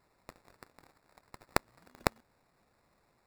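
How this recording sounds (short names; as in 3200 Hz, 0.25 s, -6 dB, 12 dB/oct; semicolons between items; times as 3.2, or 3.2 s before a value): aliases and images of a low sample rate 3100 Hz, jitter 0%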